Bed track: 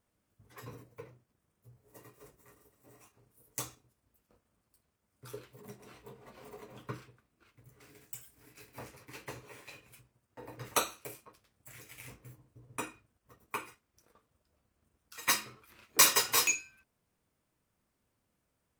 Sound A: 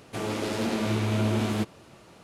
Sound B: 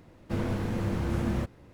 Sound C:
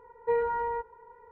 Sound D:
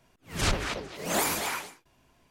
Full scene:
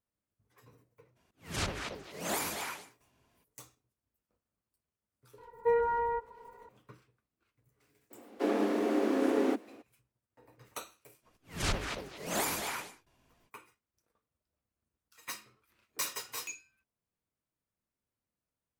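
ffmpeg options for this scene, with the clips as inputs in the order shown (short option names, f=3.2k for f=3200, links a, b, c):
-filter_complex "[4:a]asplit=2[a][b];[0:a]volume=-13dB[c];[a]highpass=51[d];[2:a]afreqshift=200[e];[d]atrim=end=2.3,asetpts=PTS-STARTPTS,volume=-7dB,afade=t=in:d=0.02,afade=t=out:st=2.28:d=0.02,adelay=1150[f];[3:a]atrim=end=1.31,asetpts=PTS-STARTPTS,volume=-0.5dB,afade=t=in:d=0.004:c=hsin,afade=t=out:st=1.306:d=0.004:c=hsin,adelay=5380[g];[e]atrim=end=1.73,asetpts=PTS-STARTPTS,afade=t=in:d=0.02,afade=t=out:st=1.71:d=0.02,adelay=357210S[h];[b]atrim=end=2.3,asetpts=PTS-STARTPTS,volume=-5.5dB,afade=t=in:d=0.05,afade=t=out:st=2.25:d=0.05,adelay=11210[i];[c][f][g][h][i]amix=inputs=5:normalize=0"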